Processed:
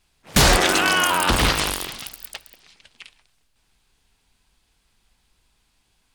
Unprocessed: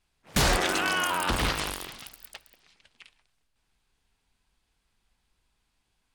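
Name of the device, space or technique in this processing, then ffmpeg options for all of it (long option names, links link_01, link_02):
exciter from parts: -filter_complex "[0:a]asplit=2[link_01][link_02];[link_02]highpass=2200,asoftclip=type=tanh:threshold=-30dB,volume=-8.5dB[link_03];[link_01][link_03]amix=inputs=2:normalize=0,volume=8dB"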